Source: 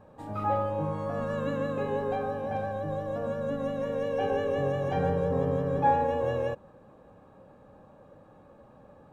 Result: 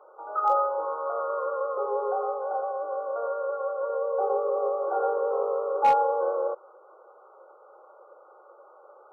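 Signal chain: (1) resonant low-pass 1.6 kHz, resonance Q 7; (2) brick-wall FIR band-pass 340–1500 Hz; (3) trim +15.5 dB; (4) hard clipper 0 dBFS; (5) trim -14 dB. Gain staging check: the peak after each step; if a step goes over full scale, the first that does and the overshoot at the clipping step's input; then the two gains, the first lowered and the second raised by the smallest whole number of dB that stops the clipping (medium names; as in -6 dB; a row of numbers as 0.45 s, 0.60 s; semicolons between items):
-8.5 dBFS, -11.0 dBFS, +4.5 dBFS, 0.0 dBFS, -14.0 dBFS; step 3, 4.5 dB; step 3 +10.5 dB, step 5 -9 dB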